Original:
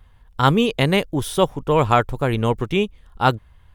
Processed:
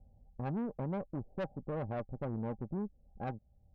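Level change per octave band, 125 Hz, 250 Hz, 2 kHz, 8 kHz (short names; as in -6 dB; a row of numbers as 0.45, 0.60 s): -18.0 dB, -16.5 dB, -27.0 dB, under -40 dB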